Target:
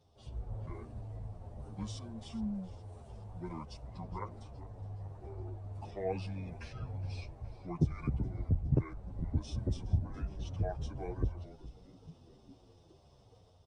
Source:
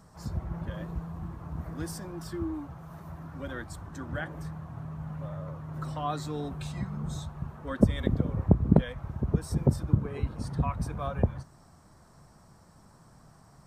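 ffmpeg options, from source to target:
ffmpeg -i in.wav -filter_complex "[0:a]highpass=frequency=59:width=0.5412,highpass=frequency=59:width=1.3066,dynaudnorm=framelen=130:gausssize=5:maxgain=6dB,asetrate=28595,aresample=44100,atempo=1.54221,asplit=6[link_01][link_02][link_03][link_04][link_05][link_06];[link_02]adelay=417,afreqshift=-110,volume=-16.5dB[link_07];[link_03]adelay=834,afreqshift=-220,volume=-21.5dB[link_08];[link_04]adelay=1251,afreqshift=-330,volume=-26.6dB[link_09];[link_05]adelay=1668,afreqshift=-440,volume=-31.6dB[link_10];[link_06]adelay=2085,afreqshift=-550,volume=-36.6dB[link_11];[link_01][link_07][link_08][link_09][link_10][link_11]amix=inputs=6:normalize=0,asplit=2[link_12][link_13];[link_13]adelay=9.3,afreqshift=-1.4[link_14];[link_12][link_14]amix=inputs=2:normalize=1,volume=-8.5dB" out.wav

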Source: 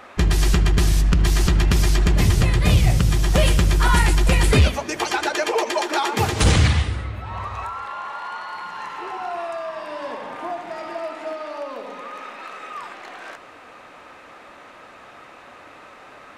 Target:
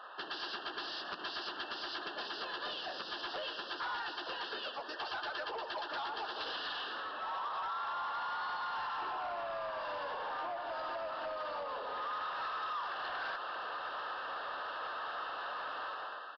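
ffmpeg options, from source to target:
ffmpeg -i in.wav -filter_complex "[0:a]dynaudnorm=framelen=160:gausssize=7:maxgain=12.5dB,highpass=frequency=260:width=0.5412,highpass=frequency=260:width=1.3066,acompressor=threshold=-25dB:ratio=8,asplit=2[link_01][link_02];[link_02]asplit=2[link_03][link_04];[link_03]adelay=416,afreqshift=81,volume=-24dB[link_05];[link_04]adelay=832,afreqshift=162,volume=-33.1dB[link_06];[link_05][link_06]amix=inputs=2:normalize=0[link_07];[link_01][link_07]amix=inputs=2:normalize=0,asplit=2[link_08][link_09];[link_09]asetrate=37084,aresample=44100,atempo=1.18921,volume=-6dB[link_10];[link_08][link_10]amix=inputs=2:normalize=0,asuperstop=centerf=2200:order=12:qfactor=2.5,highshelf=frequency=2800:gain=-9.5,asplit=2[link_11][link_12];[link_12]highpass=frequency=720:poles=1,volume=17dB,asoftclip=type=tanh:threshold=-8.5dB[link_13];[link_11][link_13]amix=inputs=2:normalize=0,lowpass=frequency=1200:poles=1,volume=-6dB,aderivative,aresample=11025,asoftclip=type=tanh:threshold=-37dB,aresample=44100,volume=3.5dB" out.wav

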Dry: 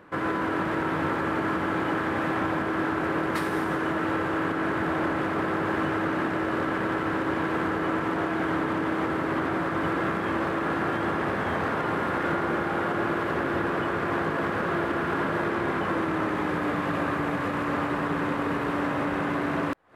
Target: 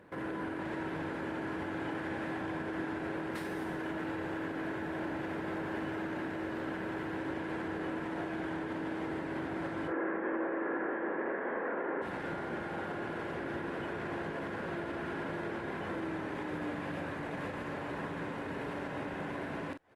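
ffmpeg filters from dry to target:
ffmpeg -i in.wav -filter_complex "[0:a]equalizer=frequency=1200:width_type=o:width=0.28:gain=-10.5,alimiter=level_in=1.5dB:limit=-24dB:level=0:latency=1:release=147,volume=-1.5dB,asplit=3[link_01][link_02][link_03];[link_01]afade=type=out:start_time=9.87:duration=0.02[link_04];[link_02]highpass=frequency=230:width=0.5412,highpass=frequency=230:width=1.3066,equalizer=frequency=360:width_type=q:width=4:gain=5,equalizer=frequency=510:width_type=q:width=4:gain=7,equalizer=frequency=1100:width_type=q:width=4:gain=4,equalizer=frequency=1700:width_type=q:width=4:gain=5,lowpass=frequency=2100:width=0.5412,lowpass=frequency=2100:width=1.3066,afade=type=in:start_time=9.87:duration=0.02,afade=type=out:start_time=12.01:duration=0.02[link_05];[link_03]afade=type=in:start_time=12.01:duration=0.02[link_06];[link_04][link_05][link_06]amix=inputs=3:normalize=0,asplit=2[link_07][link_08];[link_08]adelay=43,volume=-8.5dB[link_09];[link_07][link_09]amix=inputs=2:normalize=0,volume=-4.5dB" -ar 48000 -c:a libopus -b:a 32k out.opus

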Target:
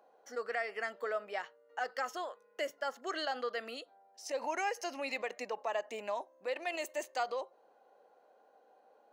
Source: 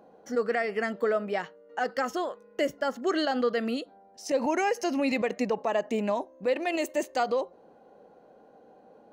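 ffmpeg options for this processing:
ffmpeg -i in.wav -af "highpass=630,volume=-5.5dB" out.wav

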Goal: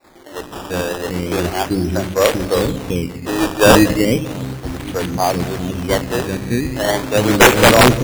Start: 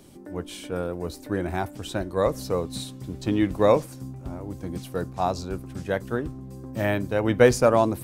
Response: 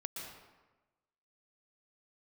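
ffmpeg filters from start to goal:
-filter_complex "[0:a]adynamicequalizer=threshold=0.0224:dfrequency=330:dqfactor=0.83:tfrequency=330:tqfactor=0.83:attack=5:release=100:ratio=0.375:range=2.5:mode=boostabove:tftype=bell,asplit=3[link_01][link_02][link_03];[link_01]afade=type=out:start_time=1.28:duration=0.02[link_04];[link_02]agate=range=-10dB:threshold=-28dB:ratio=16:detection=peak,afade=type=in:start_time=1.28:duration=0.02,afade=type=out:start_time=3.23:duration=0.02[link_05];[link_03]afade=type=in:start_time=3.23:duration=0.02[link_06];[link_04][link_05][link_06]amix=inputs=3:normalize=0,bandreject=frequency=50:width_type=h:width=6,bandreject=frequency=100:width_type=h:width=6,bandreject=frequency=150:width_type=h:width=6,bandreject=frequency=200:width_type=h:width=6,asplit=2[link_07][link_08];[link_08]equalizer=frequency=880:width_type=o:width=1.6:gain=-14.5[link_09];[1:a]atrim=start_sample=2205[link_10];[link_09][link_10]afir=irnorm=-1:irlink=0,volume=-2.5dB[link_11];[link_07][link_11]amix=inputs=2:normalize=0,acrusher=bits=2:mode=log:mix=0:aa=0.000001,acrossover=split=380|2200[link_12][link_13][link_14];[link_14]adelay=40[link_15];[link_12]adelay=390[link_16];[link_16][link_13][link_15]amix=inputs=3:normalize=0,acrusher=samples=14:mix=1:aa=0.000001:lfo=1:lforange=14:lforate=0.35,aeval=exprs='(mod(2.37*val(0)+1,2)-1)/2.37':channel_layout=same,volume=6.5dB"

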